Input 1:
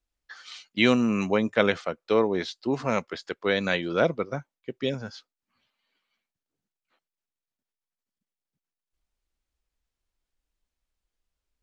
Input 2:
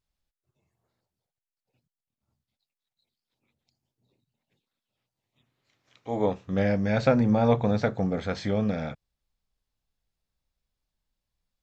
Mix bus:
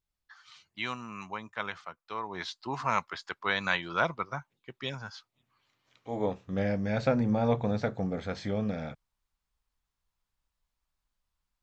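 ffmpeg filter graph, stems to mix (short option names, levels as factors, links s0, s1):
-filter_complex "[0:a]equalizer=f=250:t=o:w=1:g=-8,equalizer=f=500:t=o:w=1:g=-11,equalizer=f=1000:t=o:w=1:g=11,volume=0.708,afade=t=in:st=2.22:d=0.26:silence=0.334965[s0];[1:a]volume=0.562[s1];[s0][s1]amix=inputs=2:normalize=0"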